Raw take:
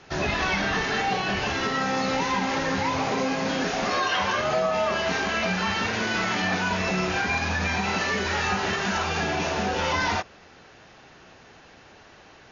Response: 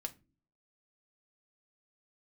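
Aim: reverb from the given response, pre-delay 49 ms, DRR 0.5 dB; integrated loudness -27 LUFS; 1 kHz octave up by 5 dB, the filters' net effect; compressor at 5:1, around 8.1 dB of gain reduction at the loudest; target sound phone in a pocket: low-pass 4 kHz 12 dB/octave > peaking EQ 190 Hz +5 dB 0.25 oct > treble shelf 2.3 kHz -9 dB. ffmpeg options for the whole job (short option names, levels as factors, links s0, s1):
-filter_complex "[0:a]equalizer=f=1000:t=o:g=8,acompressor=threshold=0.0562:ratio=5,asplit=2[s0][s1];[1:a]atrim=start_sample=2205,adelay=49[s2];[s1][s2]afir=irnorm=-1:irlink=0,volume=1.12[s3];[s0][s3]amix=inputs=2:normalize=0,lowpass=4000,equalizer=f=190:t=o:w=0.25:g=5,highshelf=f=2300:g=-9,volume=0.891"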